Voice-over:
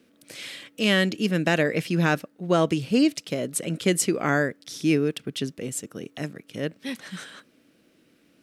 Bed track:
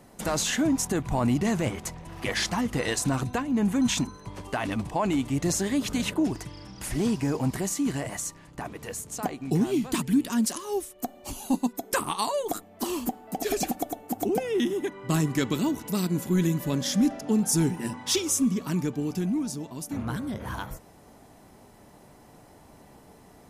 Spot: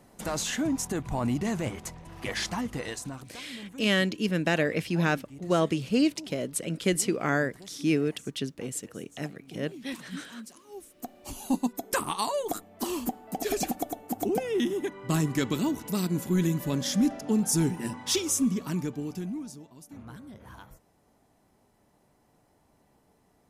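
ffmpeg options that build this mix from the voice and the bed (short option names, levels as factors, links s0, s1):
-filter_complex "[0:a]adelay=3000,volume=0.668[s0];[1:a]volume=4.73,afade=t=out:st=2.56:d=0.72:silence=0.177828,afade=t=in:st=10.68:d=0.81:silence=0.133352,afade=t=out:st=18.5:d=1.22:silence=0.251189[s1];[s0][s1]amix=inputs=2:normalize=0"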